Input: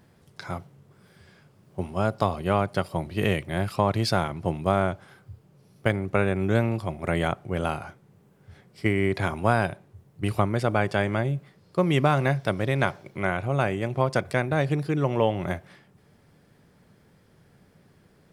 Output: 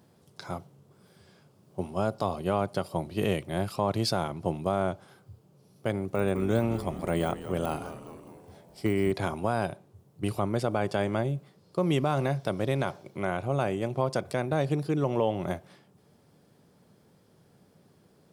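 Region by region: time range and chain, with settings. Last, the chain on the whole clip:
5.96–9.12 s: de-esser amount 95% + treble shelf 6.7 kHz +5.5 dB + frequency-shifting echo 207 ms, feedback 59%, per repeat -150 Hz, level -12 dB
whole clip: high-pass 160 Hz 6 dB/octave; peaking EQ 1.9 kHz -8.5 dB 1.1 oct; peak limiter -15 dBFS

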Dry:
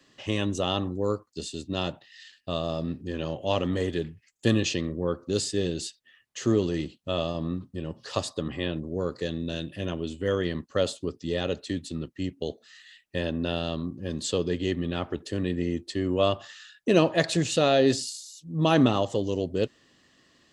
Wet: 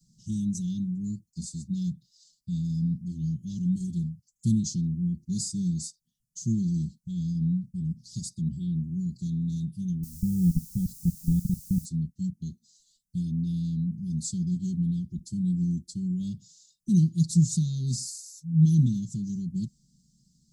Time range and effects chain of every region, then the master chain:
10.03–11.85 s: tilt EQ -3.5 dB/octave + level held to a coarse grid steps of 22 dB + word length cut 8-bit, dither triangular
whole clip: inverse Chebyshev band-stop 470–2500 Hz, stop band 50 dB; tone controls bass +11 dB, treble +4 dB; comb 5.4 ms, depth 96%; trim -5.5 dB

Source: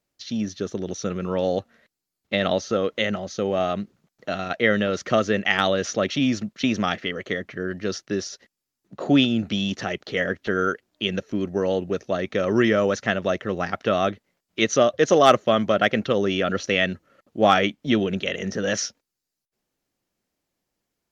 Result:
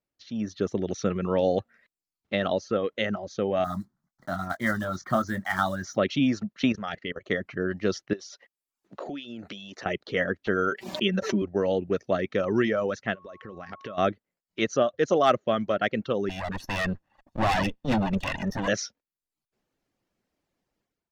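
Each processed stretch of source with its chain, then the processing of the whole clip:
3.64–5.98 s: block-companded coder 5-bit + static phaser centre 1.1 kHz, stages 4 + doubling 22 ms -8 dB
6.72–7.31 s: bass shelf 86 Hz +5 dB + level held to a coarse grid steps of 15 dB
8.13–9.86 s: tone controls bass -12 dB, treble +2 dB + compression 16:1, threshold -34 dBFS
10.71–11.42 s: high-pass 95 Hz + comb 5.2 ms, depth 78% + swell ahead of each attack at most 77 dB/s
13.14–13.97 s: compression 12:1, threshold -32 dBFS + whistle 1.1 kHz -46 dBFS
16.29–18.68 s: comb filter that takes the minimum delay 1.1 ms + hard clipper -22.5 dBFS
whole clip: level rider; reverb removal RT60 0.53 s; treble shelf 4.9 kHz -11.5 dB; trim -8.5 dB

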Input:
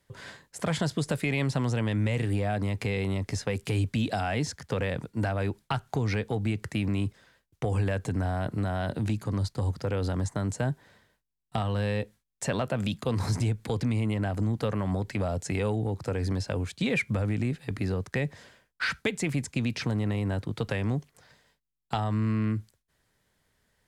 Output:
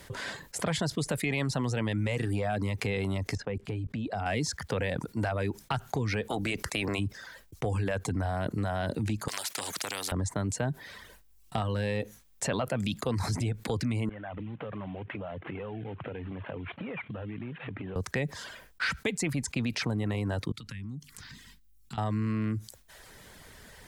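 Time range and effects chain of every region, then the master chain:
3.35–4.26 s: low-pass 1.3 kHz 6 dB/octave + level held to a coarse grid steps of 17 dB
6.29–6.98 s: spectral peaks clipped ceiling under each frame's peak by 17 dB + compression 1.5:1, threshold -32 dBFS
9.28–10.12 s: high-pass 510 Hz + spectrum-flattening compressor 4:1
14.09–17.96 s: CVSD coder 16 kbps + high-pass 100 Hz 24 dB/octave + compression 8:1, threshold -42 dBFS
20.52–21.98 s: FFT filter 260 Hz 0 dB, 590 Hz -28 dB, 1.1 kHz -10 dB, 3.9 kHz -5 dB + compression 2:1, threshold -57 dBFS
whole clip: reverb removal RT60 0.58 s; peaking EQ 130 Hz -2.5 dB 1.1 oct; level flattener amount 50%; trim -2.5 dB

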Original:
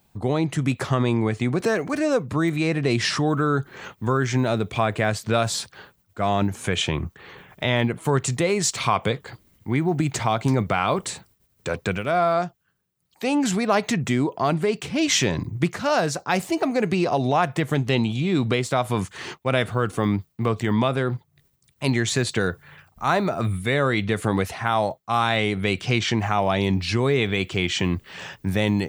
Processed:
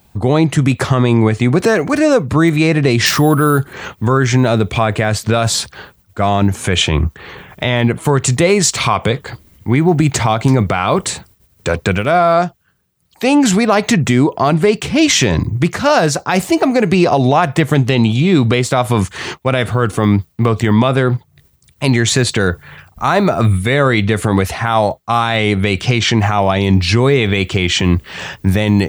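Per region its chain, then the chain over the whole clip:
3.06–3.73 s: low-pass 9.1 kHz + careless resampling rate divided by 4×, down none, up hold
whole clip: peaking EQ 68 Hz +7.5 dB 0.77 oct; loudness maximiser +11.5 dB; trim -1 dB

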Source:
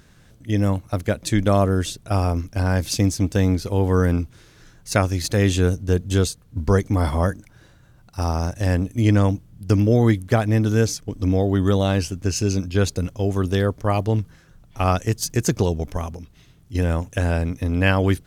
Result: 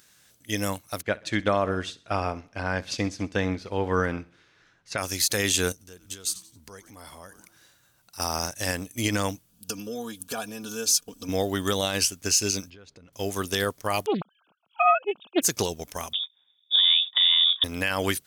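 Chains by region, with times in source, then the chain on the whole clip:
1.02–4.98 s: low-pass 2.4 kHz + feedback delay 64 ms, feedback 46%, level -17 dB
5.72–8.20 s: frequency-shifting echo 90 ms, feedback 39%, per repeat -140 Hz, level -19.5 dB + compression 4:1, threshold -32 dBFS
9.49–11.29 s: compression 4:1, threshold -24 dBFS + Butterworth band-stop 2 kHz, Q 3.4 + comb 4.2 ms, depth 75%
12.70–13.13 s: tape spacing loss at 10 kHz 32 dB + compression 10:1, threshold -30 dBFS
14.06–15.42 s: formants replaced by sine waves + Butterworth band-stop 1.9 kHz, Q 1.4 + loudspeaker Doppler distortion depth 0.31 ms
16.13–17.64 s: gate -43 dBFS, range -15 dB + compression, threshold -27 dBFS + frequency inversion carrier 3.6 kHz
whole clip: tilt EQ +4 dB/octave; peak limiter -12.5 dBFS; upward expansion 1.5:1, over -40 dBFS; trim +3 dB

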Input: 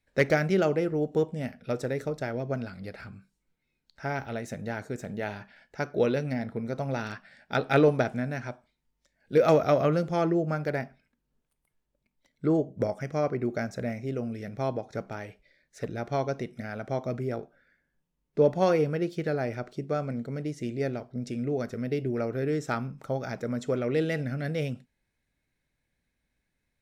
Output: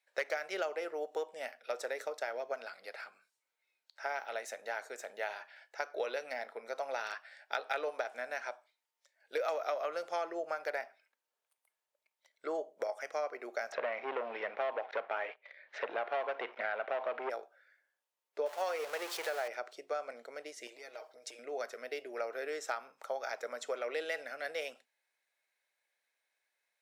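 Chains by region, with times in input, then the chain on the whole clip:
13.72–17.30 s: waveshaping leveller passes 3 + low-pass 3 kHz 24 dB/octave + upward compressor, threshold -37 dBFS
18.46–19.48 s: jump at every zero crossing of -33 dBFS + peaking EQ 240 Hz -10 dB 0.76 oct
20.67–21.39 s: treble shelf 3.8 kHz +7 dB + comb 6.4 ms, depth 72% + compression 8:1, threshold -37 dBFS
whole clip: high-pass 570 Hz 24 dB/octave; compression 6:1, threshold -32 dBFS

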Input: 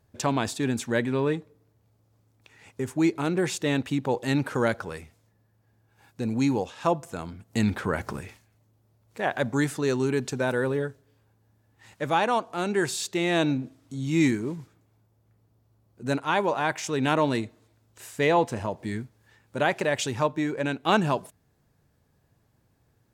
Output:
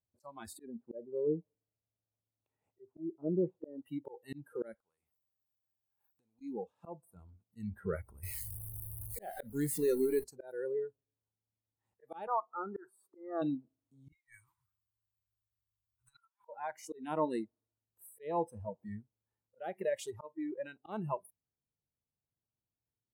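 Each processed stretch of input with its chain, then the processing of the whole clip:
0.64–3.79 s: low-pass that closes with the level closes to 820 Hz, closed at -25 dBFS + peaking EQ 620 Hz +6 dB 0.53 oct
4.74–6.41 s: tilt shelf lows -9 dB, about 700 Hz + compression 16:1, threshold -46 dBFS
8.23–10.24 s: jump at every zero crossing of -27.5 dBFS + treble shelf 5.1 kHz +5 dB
12.27–13.42 s: high-pass 460 Hz 6 dB/octave + resonant high shelf 1.8 kHz -12.5 dB, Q 3
14.12–16.49 s: inverse Chebyshev band-stop 160–640 Hz + compressor with a negative ratio -40 dBFS, ratio -0.5
whole clip: spectral noise reduction 24 dB; high-order bell 3.3 kHz -12 dB 2.6 oct; slow attack 358 ms; trim -5.5 dB

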